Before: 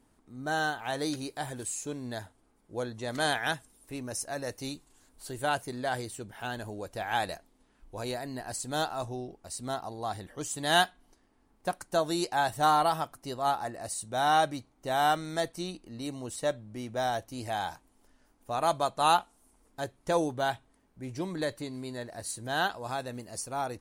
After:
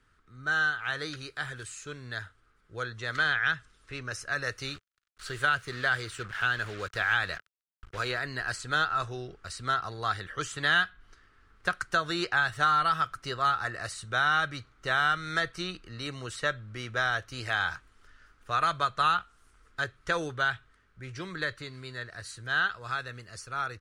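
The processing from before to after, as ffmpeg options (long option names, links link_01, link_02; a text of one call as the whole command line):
ffmpeg -i in.wav -filter_complex "[0:a]asettb=1/sr,asplit=3[link_01][link_02][link_03];[link_01]atrim=end=3.184[link_04];[link_02]atrim=start=3.18:end=4.12,asetpts=PTS-STARTPTS,afade=type=in:duration=0.004:curve=qsin,afade=type=out:start_time=0.936:duration=0.004:curve=qsin,lowpass=7000[link_05];[link_03]atrim=start=4.116[link_06];[link_04][link_05]acrossfade=duration=0.004:curve1=hsin:curve2=qsin[link_07];[link_07][link_06]acrossfade=duration=0.004:curve1=qsin:curve2=hsin,asettb=1/sr,asplit=3[link_08][link_09][link_10];[link_08]atrim=end=4.674[link_11];[link_09]atrim=start=4.67:end=8.19,asetpts=PTS-STARTPTS,afade=type=in:duration=0.004:curve=qsin,afade=type=out:start_time=3.516:duration=0.004:curve=qsin,acrusher=bits=7:mix=0:aa=0.5[link_12];[link_10]atrim=start=8.186[link_13];[link_11][link_12]acrossfade=duration=0.004:curve1=hsin:curve2=qsin[link_14];[link_14][link_13]acrossfade=duration=0.004:curve1=qsin:curve2=hsin,dynaudnorm=framelen=770:gausssize=11:maxgain=7.5dB,firequalizer=gain_entry='entry(110,0);entry(250,-15);entry(420,-6);entry(610,-12);entry(880,-13);entry(1300,10);entry(2200,2);entry(3200,2);entry(12000,-18)':delay=0.05:min_phase=1,acrossover=split=200|3200[link_15][link_16][link_17];[link_15]acompressor=threshold=-45dB:ratio=4[link_18];[link_16]acompressor=threshold=-26dB:ratio=4[link_19];[link_17]acompressor=threshold=-43dB:ratio=4[link_20];[link_18][link_19][link_20]amix=inputs=3:normalize=0,volume=2dB" out.wav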